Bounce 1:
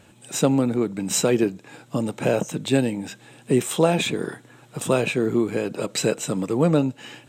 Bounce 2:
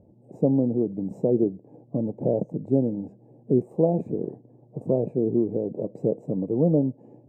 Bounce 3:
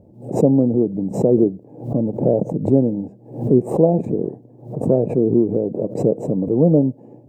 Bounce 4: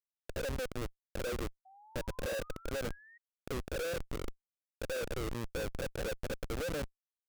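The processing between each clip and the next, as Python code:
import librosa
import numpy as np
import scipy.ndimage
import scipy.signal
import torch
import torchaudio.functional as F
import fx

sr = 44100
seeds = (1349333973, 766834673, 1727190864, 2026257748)

y1 = scipy.signal.sosfilt(scipy.signal.cheby2(4, 40, 1300.0, 'lowpass', fs=sr, output='sos'), x)
y1 = F.gain(torch.from_numpy(y1), -1.5).numpy()
y2 = fx.pre_swell(y1, sr, db_per_s=120.0)
y2 = F.gain(torch.from_numpy(y2), 6.5).numpy()
y3 = fx.double_bandpass(y2, sr, hz=1200.0, octaves=2.3)
y3 = fx.schmitt(y3, sr, flips_db=-28.0)
y3 = fx.spec_paint(y3, sr, seeds[0], shape='rise', start_s=1.65, length_s=1.53, low_hz=750.0, high_hz=1900.0, level_db=-51.0)
y3 = F.gain(torch.from_numpy(y3), -7.5).numpy()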